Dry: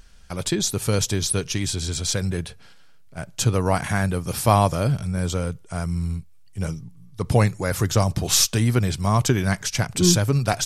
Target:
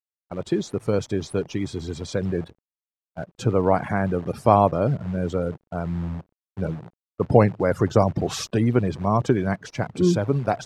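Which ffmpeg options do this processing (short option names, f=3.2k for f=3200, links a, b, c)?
-af "agate=range=-33dB:threshold=-33dB:ratio=3:detection=peak,afftfilt=real='re*gte(hypot(re,im),0.0282)':imag='im*gte(hypot(re,im),0.0282)':win_size=1024:overlap=0.75,dynaudnorm=f=200:g=21:m=14.5dB,acrusher=bits=7:dc=4:mix=0:aa=0.000001,bandpass=f=440:t=q:w=0.65:csg=0,volume=2.5dB"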